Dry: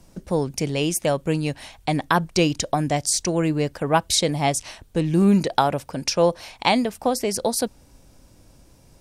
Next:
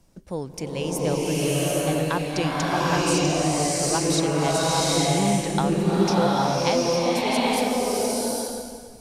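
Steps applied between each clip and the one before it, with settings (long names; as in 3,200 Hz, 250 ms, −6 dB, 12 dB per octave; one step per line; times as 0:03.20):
slow-attack reverb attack 810 ms, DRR −7.5 dB
level −8 dB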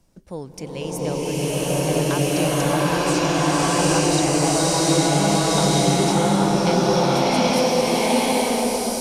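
slow-attack reverb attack 890 ms, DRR −4 dB
level −2 dB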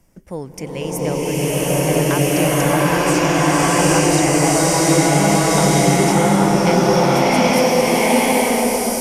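thirty-one-band graphic EQ 2,000 Hz +7 dB, 4,000 Hz −11 dB, 12,500 Hz +6 dB
level +4 dB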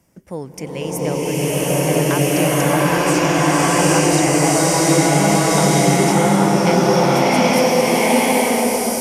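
high-pass filter 77 Hz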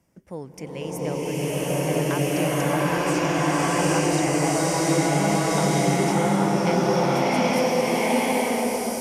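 high-shelf EQ 5,900 Hz −5 dB
level −6.5 dB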